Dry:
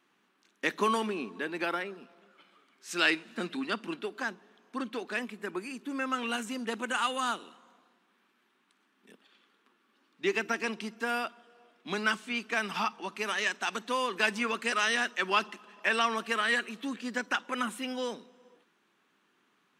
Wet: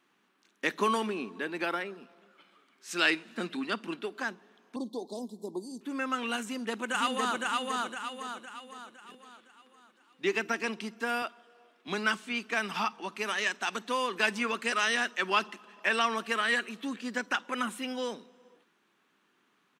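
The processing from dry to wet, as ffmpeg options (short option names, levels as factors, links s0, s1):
-filter_complex "[0:a]asettb=1/sr,asplit=3[s0][s1][s2];[s0]atrim=end=4.764[s3];[s1]atrim=start=4.76:end=5.81,asetpts=PTS-STARTPTS,afade=t=in:d=0.004:c=qsin,afade=t=out:st=1.046:d=0.004:c=qsin,asuperstop=centerf=1900:order=12:qfactor=0.67[s4];[s2]atrim=start=5.806[s5];[s3][s4]acrossfade=d=0.004:c1=hsin:c2=qsin[s6];[s6][s5]acrossfade=d=0.004:c1=qsin:c2=hsin,asplit=2[s7][s8];[s8]afade=t=in:st=6.43:d=0.01,afade=t=out:st=7.43:d=0.01,aecho=0:1:510|1020|1530|2040|2550|3060:0.841395|0.378628|0.170383|0.0766721|0.0345025|0.0155261[s9];[s7][s9]amix=inputs=2:normalize=0,asettb=1/sr,asplit=3[s10][s11][s12];[s10]atrim=end=11.224[s13];[s11]atrim=start=11.22:end=11.88,asetpts=PTS-STARTPTS,afade=t=in:d=0.004:c=qsin,afade=t=out:st=0.656:d=0.004:c=qsin,highpass=240[s14];[s12]atrim=start=11.876[s15];[s13][s14]acrossfade=d=0.004:c1=hsin:c2=qsin[s16];[s16][s15]acrossfade=d=0.004:c1=qsin:c2=hsin"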